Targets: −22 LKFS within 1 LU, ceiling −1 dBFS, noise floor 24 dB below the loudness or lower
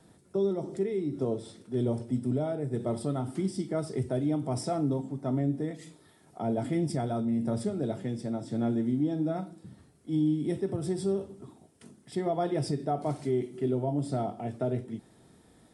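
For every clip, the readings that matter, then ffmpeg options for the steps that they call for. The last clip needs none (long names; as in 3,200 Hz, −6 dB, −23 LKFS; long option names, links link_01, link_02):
integrated loudness −31.0 LKFS; sample peak −19.0 dBFS; target loudness −22.0 LKFS
→ -af "volume=9dB"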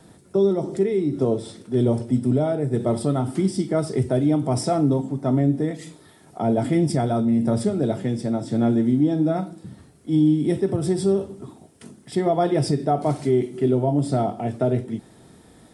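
integrated loudness −22.0 LKFS; sample peak −10.0 dBFS; background noise floor −51 dBFS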